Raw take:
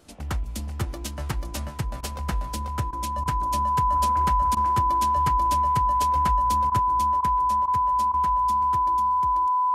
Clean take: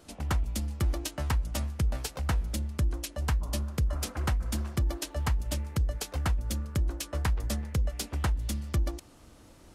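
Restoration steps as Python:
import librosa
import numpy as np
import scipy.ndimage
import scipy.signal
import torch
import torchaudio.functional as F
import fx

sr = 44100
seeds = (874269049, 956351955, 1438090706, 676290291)

y = fx.notch(x, sr, hz=1000.0, q=30.0)
y = fx.fix_interpolate(y, sr, at_s=(2.01, 2.91, 3.24, 4.55, 6.7, 7.21, 7.66, 8.12), length_ms=17.0)
y = fx.fix_echo_inverse(y, sr, delay_ms=489, level_db=-3.5)
y = fx.fix_level(y, sr, at_s=6.79, step_db=8.0)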